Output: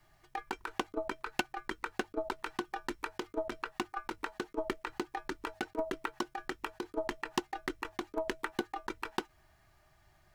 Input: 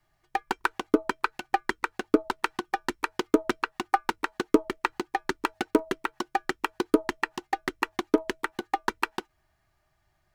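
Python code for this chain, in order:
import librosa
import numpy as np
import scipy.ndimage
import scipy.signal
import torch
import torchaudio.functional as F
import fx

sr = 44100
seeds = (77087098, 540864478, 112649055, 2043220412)

y = fx.over_compress(x, sr, threshold_db=-33.0, ratio=-1.0)
y = F.gain(torch.from_numpy(y), -2.0).numpy()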